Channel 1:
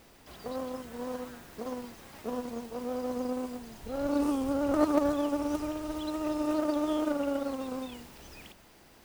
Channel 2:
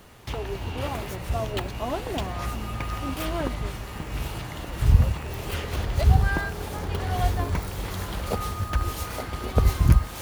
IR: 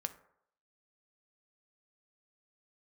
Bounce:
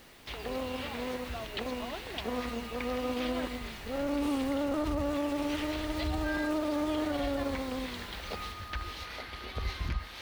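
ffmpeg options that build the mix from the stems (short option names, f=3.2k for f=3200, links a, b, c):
-filter_complex "[0:a]volume=0dB[a];[1:a]bandreject=f=7.1k:w=17,acrossover=split=5400[b][c];[c]acompressor=threshold=-59dB:ratio=4:attack=1:release=60[d];[b][d]amix=inputs=2:normalize=0,equalizer=f=125:t=o:w=1:g=-9,equalizer=f=2k:t=o:w=1:g=8,equalizer=f=4k:t=o:w=1:g=10,equalizer=f=16k:t=o:w=1:g=10,volume=-12dB[e];[a][e]amix=inputs=2:normalize=0,alimiter=limit=-23.5dB:level=0:latency=1:release=32"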